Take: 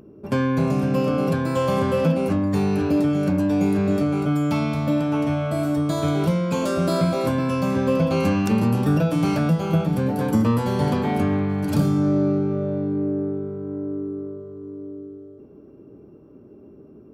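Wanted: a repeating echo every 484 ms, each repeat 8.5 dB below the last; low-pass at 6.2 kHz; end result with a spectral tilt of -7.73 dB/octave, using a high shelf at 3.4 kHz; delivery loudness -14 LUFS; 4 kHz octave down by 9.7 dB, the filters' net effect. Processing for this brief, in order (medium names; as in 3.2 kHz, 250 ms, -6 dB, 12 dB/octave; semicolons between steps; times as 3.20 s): low-pass 6.2 kHz; treble shelf 3.4 kHz -7.5 dB; peaking EQ 4 kHz -7 dB; feedback delay 484 ms, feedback 38%, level -8.5 dB; trim +7 dB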